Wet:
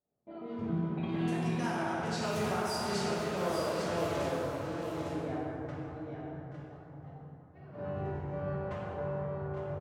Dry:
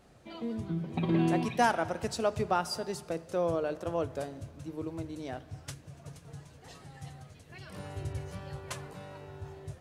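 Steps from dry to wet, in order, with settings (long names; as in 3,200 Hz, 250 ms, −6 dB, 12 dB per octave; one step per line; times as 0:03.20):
0:02.03–0:04.30: converter with a step at zero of −33.5 dBFS
high-pass filter 200 Hz 6 dB per octave
noise gate −49 dBFS, range −29 dB
low-pass that shuts in the quiet parts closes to 700 Hz, open at −26 dBFS
dynamic equaliser 490 Hz, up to −7 dB, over −43 dBFS, Q 1.1
downward compressor 4 to 1, threshold −38 dBFS, peak gain reduction 13 dB
shaped tremolo triangle 1.8 Hz, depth 55%
multi-tap delay 829/855 ms −12.5/−8 dB
dense smooth reverb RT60 2.9 s, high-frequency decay 0.45×, DRR −6.5 dB
level +2 dB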